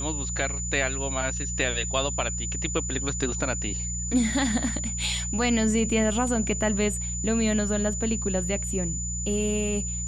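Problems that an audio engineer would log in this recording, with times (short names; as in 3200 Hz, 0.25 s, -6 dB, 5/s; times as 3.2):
hum 60 Hz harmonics 3 -33 dBFS
tone 7000 Hz -31 dBFS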